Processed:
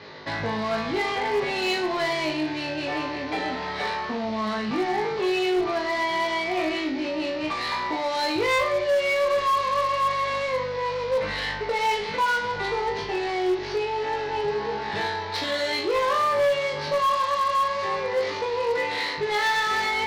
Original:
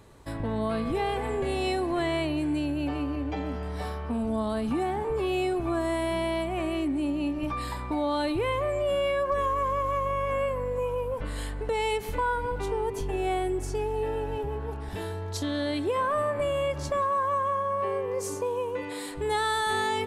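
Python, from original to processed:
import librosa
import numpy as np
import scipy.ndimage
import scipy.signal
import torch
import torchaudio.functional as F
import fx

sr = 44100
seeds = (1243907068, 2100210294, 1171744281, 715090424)

p1 = fx.cvsd(x, sr, bps=32000)
p2 = fx.rider(p1, sr, range_db=10, speed_s=0.5)
p3 = p1 + F.gain(torch.from_numpy(p2), -3.0).numpy()
p4 = fx.vibrato(p3, sr, rate_hz=3.4, depth_cents=11.0)
p5 = fx.cabinet(p4, sr, low_hz=210.0, low_slope=12, high_hz=5000.0, hz=(290.0, 2000.0, 4200.0), db=(-7, 8, 6))
p6 = 10.0 ** (-20.0 / 20.0) * np.tanh(p5 / 10.0 ** (-20.0 / 20.0))
p7 = p6 + fx.room_flutter(p6, sr, wall_m=3.3, rt60_s=0.4, dry=0)
y = fx.cheby_harmonics(p7, sr, harmonics=(5,), levels_db=(-27,), full_scale_db=-18.5)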